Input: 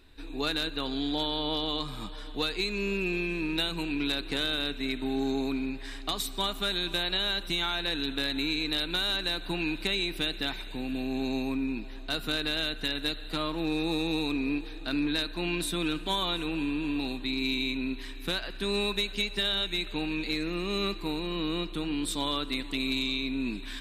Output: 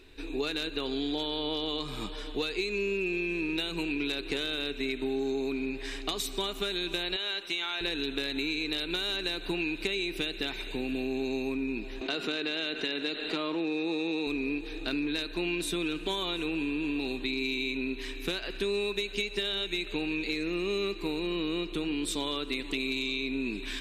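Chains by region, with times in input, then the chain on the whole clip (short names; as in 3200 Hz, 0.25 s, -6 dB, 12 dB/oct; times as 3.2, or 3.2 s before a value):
7.16–7.81 HPF 920 Hz 6 dB/oct + high shelf 6000 Hz -9.5 dB
12.01–14.27 BPF 200–6600 Hz + high shelf 4700 Hz -5 dB + fast leveller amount 50%
whole clip: fifteen-band EQ 400 Hz +10 dB, 2500 Hz +7 dB, 6300 Hz +6 dB; compressor 4:1, threshold -29 dBFS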